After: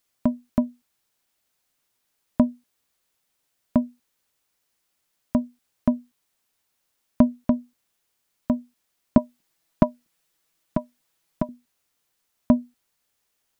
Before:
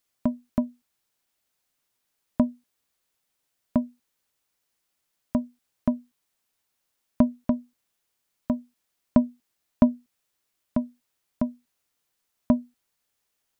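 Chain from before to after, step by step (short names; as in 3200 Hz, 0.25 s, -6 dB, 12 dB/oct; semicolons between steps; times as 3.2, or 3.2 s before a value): 9.17–11.49 comb 6.1 ms, depth 71%; gain +3 dB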